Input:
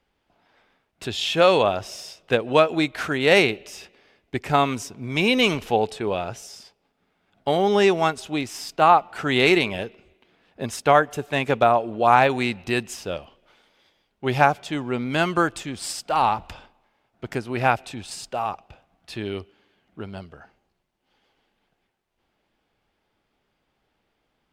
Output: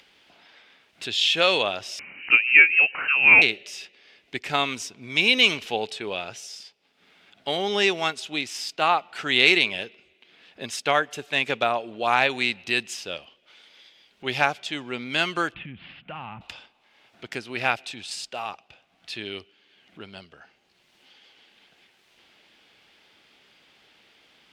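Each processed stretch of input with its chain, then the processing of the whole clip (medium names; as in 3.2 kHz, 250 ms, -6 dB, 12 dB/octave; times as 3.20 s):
1.99–3.42 s: upward compressor, threshold -21 dBFS + frequency inversion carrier 2.9 kHz
15.54–16.41 s: steep low-pass 2.9 kHz 48 dB/octave + resonant low shelf 260 Hz +13.5 dB, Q 1.5 + compression 10:1, threshold -26 dBFS
whole clip: frequency weighting D; upward compressor, threshold -37 dBFS; trim -6.5 dB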